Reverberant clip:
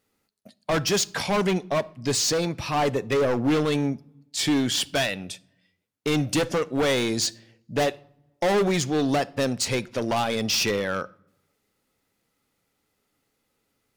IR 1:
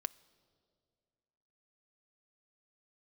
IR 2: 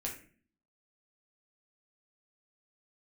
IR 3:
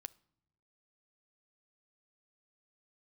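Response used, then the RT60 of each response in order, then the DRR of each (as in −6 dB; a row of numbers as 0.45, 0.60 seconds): 3; 2.2 s, 0.45 s, non-exponential decay; 15.0, −2.5, 15.5 decibels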